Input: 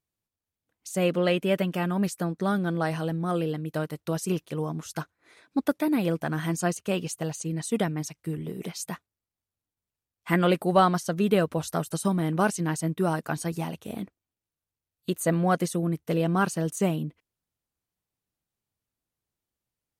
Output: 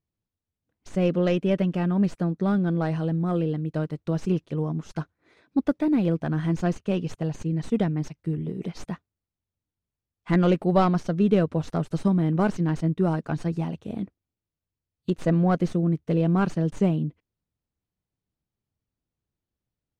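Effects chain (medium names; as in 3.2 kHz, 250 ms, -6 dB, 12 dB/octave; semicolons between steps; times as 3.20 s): tracing distortion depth 0.1 ms; low-pass 5.6 kHz 12 dB/octave; bass shelf 490 Hz +11.5 dB; trim -5.5 dB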